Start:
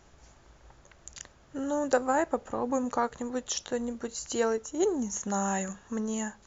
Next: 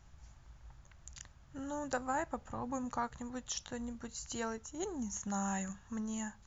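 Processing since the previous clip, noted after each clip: FFT filter 120 Hz 0 dB, 440 Hz -18 dB, 860 Hz -9 dB; trim +2 dB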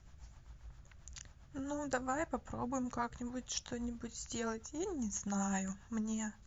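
rotary cabinet horn 7.5 Hz; trim +2.5 dB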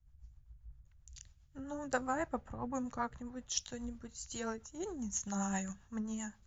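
three bands expanded up and down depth 70%; trim -1 dB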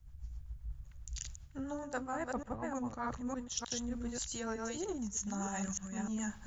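chunks repeated in reverse 304 ms, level -4 dB; reverse; compression 6:1, threshold -46 dBFS, peak gain reduction 17 dB; reverse; trim +10 dB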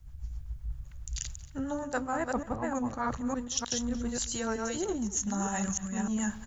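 delay 228 ms -19 dB; trim +6.5 dB

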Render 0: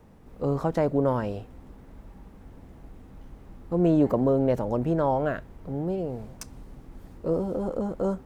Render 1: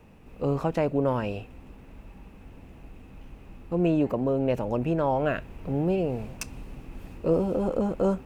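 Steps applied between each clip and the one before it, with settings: peaking EQ 2.6 kHz +14 dB 0.33 oct; gain riding within 4 dB 0.5 s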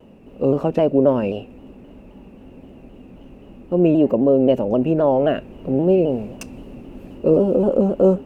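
small resonant body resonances 250/380/540/2800 Hz, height 13 dB, ringing for 25 ms; vibrato with a chosen wave saw down 3.8 Hz, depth 100 cents; trim -2.5 dB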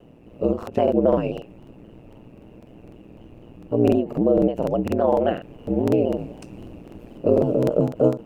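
ring modulator 59 Hz; crackling interface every 0.25 s, samples 2048, repeat, from 0.58 s; endings held to a fixed fall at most 190 dB/s

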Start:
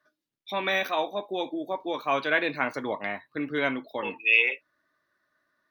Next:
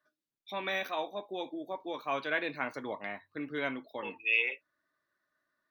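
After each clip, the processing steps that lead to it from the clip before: de-hum 48.05 Hz, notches 2; trim -7.5 dB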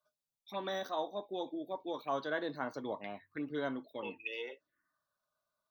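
touch-sensitive phaser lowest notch 310 Hz, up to 2.4 kHz, full sweep at -33.5 dBFS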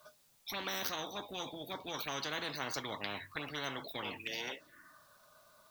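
spectrum-flattening compressor 4:1; trim +3.5 dB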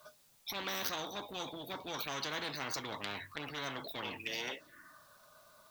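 transformer saturation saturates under 3.2 kHz; trim +2 dB

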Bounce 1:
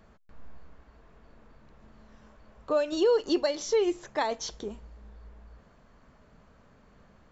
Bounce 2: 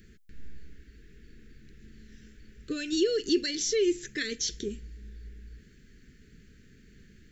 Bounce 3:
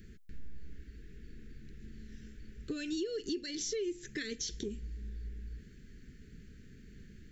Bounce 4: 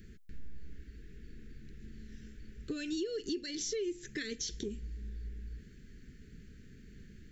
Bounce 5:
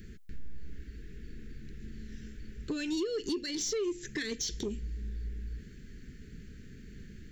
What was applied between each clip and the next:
elliptic band-stop 400–1700 Hz, stop band 60 dB; treble shelf 6.1 kHz +8.5 dB; in parallel at -1 dB: peak limiter -27 dBFS, peak gain reduction 11 dB; on the sum: trim -1 dB
bass shelf 390 Hz +5.5 dB; compression 4:1, threshold -33 dBFS, peak gain reduction 13.5 dB; trim -2.5 dB
short-mantissa float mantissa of 8-bit
saturation -30.5 dBFS, distortion -20 dB; trim +5 dB

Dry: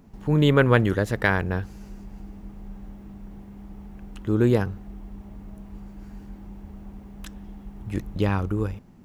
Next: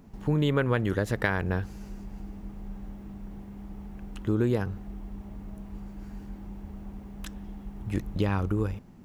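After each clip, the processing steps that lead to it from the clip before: compression 4:1, threshold -22 dBFS, peak gain reduction 9 dB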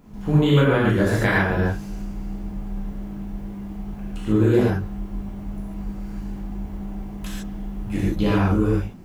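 gated-style reverb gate 170 ms flat, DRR -7.5 dB

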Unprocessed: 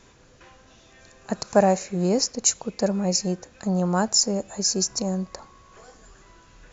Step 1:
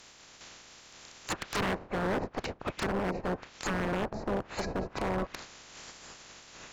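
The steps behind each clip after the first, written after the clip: spectral peaks clipped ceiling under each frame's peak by 28 dB; low-pass that closes with the level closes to 630 Hz, closed at -21 dBFS; wavefolder -24.5 dBFS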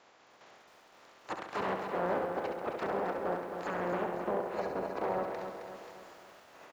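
band-pass filter 680 Hz, Q 0.87; feedback delay 68 ms, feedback 58%, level -6.5 dB; bit-crushed delay 266 ms, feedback 55%, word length 10-bit, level -7 dB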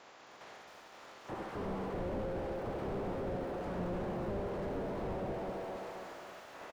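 on a send: delay 83 ms -9.5 dB; on the sum: slew-rate limiter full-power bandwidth 4 Hz; trim +5 dB

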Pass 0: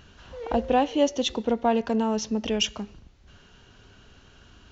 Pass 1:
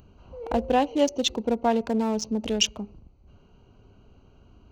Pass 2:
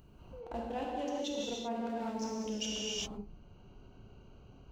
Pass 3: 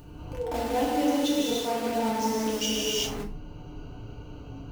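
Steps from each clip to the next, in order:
local Wiener filter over 25 samples; treble shelf 5.2 kHz +11.5 dB
gated-style reverb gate 420 ms flat, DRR -4.5 dB; reverse; compression 5:1, threshold -29 dBFS, peak gain reduction 14.5 dB; reverse; trim -6.5 dB
in parallel at -5 dB: integer overflow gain 40 dB; on the sum: FDN reverb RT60 0.33 s, low-frequency decay 1.45×, high-frequency decay 0.9×, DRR -0.5 dB; trim +6 dB

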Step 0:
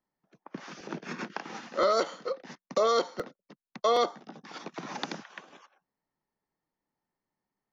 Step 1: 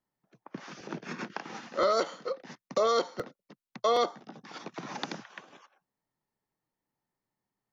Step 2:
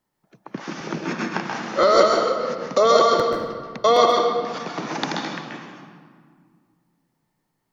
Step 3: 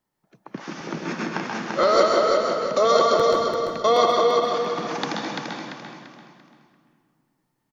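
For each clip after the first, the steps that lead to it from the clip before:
peaking EQ 120 Hz +7.5 dB 0.37 oct; trim -1 dB
reverberation RT60 1.9 s, pre-delay 131 ms, DRR 0 dB; trim +9 dB
feedback delay 341 ms, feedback 34%, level -4.5 dB; trim -2.5 dB

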